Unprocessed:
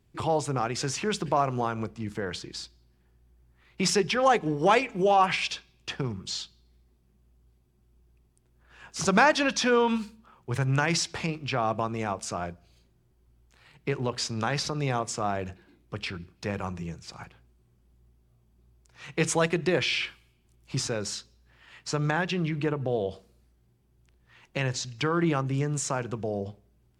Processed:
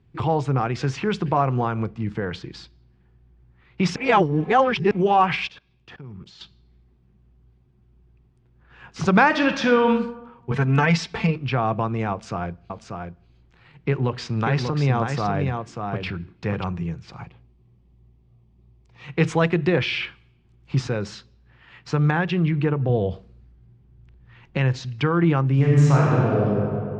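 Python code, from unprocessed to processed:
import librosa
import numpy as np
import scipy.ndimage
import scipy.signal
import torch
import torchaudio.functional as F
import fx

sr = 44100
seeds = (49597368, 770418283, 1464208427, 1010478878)

y = fx.level_steps(x, sr, step_db=23, at=(5.47, 6.41))
y = fx.reverb_throw(y, sr, start_s=9.26, length_s=0.61, rt60_s=0.97, drr_db=5.5)
y = fx.comb(y, sr, ms=4.5, depth=0.92, at=(10.51, 11.36))
y = fx.echo_single(y, sr, ms=588, db=-5.0, at=(12.11, 16.64))
y = fx.peak_eq(y, sr, hz=1500.0, db=-14.0, octaves=0.29, at=(17.21, 19.08))
y = fx.low_shelf(y, sr, hz=140.0, db=9.0, at=(22.89, 24.57))
y = fx.reverb_throw(y, sr, start_s=25.54, length_s=0.93, rt60_s=2.5, drr_db=-5.0)
y = fx.edit(y, sr, fx.reverse_span(start_s=3.96, length_s=0.95), tone=tone)
y = scipy.signal.sosfilt(scipy.signal.butter(2, 3100.0, 'lowpass', fs=sr, output='sos'), y)
y = fx.peak_eq(y, sr, hz=130.0, db=6.0, octaves=1.3)
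y = fx.notch(y, sr, hz=610.0, q=12.0)
y = F.gain(torch.from_numpy(y), 4.0).numpy()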